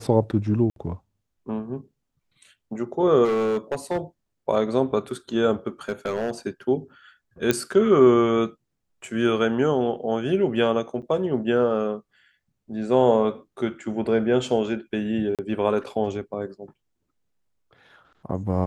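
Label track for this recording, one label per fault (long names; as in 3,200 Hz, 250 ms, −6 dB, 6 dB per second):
0.700000	0.760000	drop-out 62 ms
3.240000	3.980000	clipping −19.5 dBFS
5.890000	6.310000	clipping −20 dBFS
7.510000	7.510000	click −6 dBFS
11.020000	11.030000	drop-out 7.4 ms
15.350000	15.390000	drop-out 37 ms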